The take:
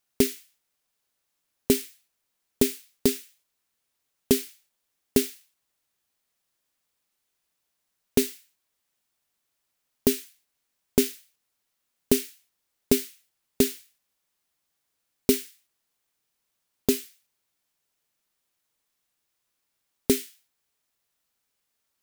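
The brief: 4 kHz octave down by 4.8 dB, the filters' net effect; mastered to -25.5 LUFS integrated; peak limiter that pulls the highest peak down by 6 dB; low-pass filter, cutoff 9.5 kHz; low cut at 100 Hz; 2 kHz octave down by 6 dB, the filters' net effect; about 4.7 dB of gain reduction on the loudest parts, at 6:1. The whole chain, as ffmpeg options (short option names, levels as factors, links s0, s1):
-af "highpass=100,lowpass=9500,equalizer=f=2000:t=o:g=-6,equalizer=f=4000:t=o:g=-4.5,acompressor=threshold=0.0891:ratio=6,volume=3.55,alimiter=limit=0.668:level=0:latency=1"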